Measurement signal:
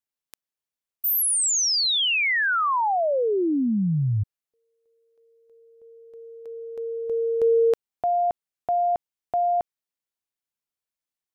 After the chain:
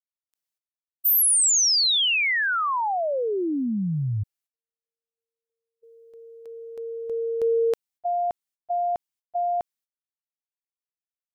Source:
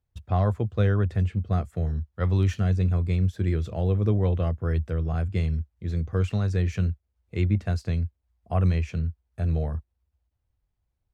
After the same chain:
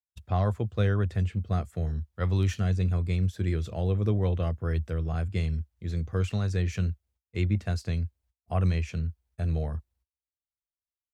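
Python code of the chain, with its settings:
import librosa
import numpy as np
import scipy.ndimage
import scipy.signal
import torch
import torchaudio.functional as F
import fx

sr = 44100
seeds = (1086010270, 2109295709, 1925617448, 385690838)

y = fx.gate_hold(x, sr, open_db=-46.0, close_db=-52.0, hold_ms=194.0, range_db=-31, attack_ms=18.0, release_ms=57.0)
y = fx.high_shelf(y, sr, hz=2600.0, db=6.5)
y = F.gain(torch.from_numpy(y), -3.0).numpy()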